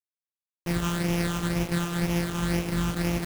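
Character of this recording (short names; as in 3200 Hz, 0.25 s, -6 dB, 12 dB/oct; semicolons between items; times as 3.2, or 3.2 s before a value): a buzz of ramps at a fixed pitch in blocks of 256 samples; phasing stages 8, 2 Hz, lowest notch 600–1300 Hz; a quantiser's noise floor 6-bit, dither none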